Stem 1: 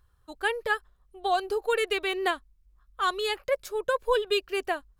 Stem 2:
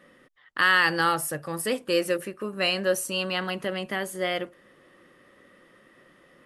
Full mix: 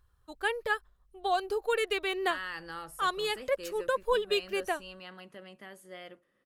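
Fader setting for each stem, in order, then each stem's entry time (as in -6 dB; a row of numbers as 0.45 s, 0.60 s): -3.0 dB, -18.5 dB; 0.00 s, 1.70 s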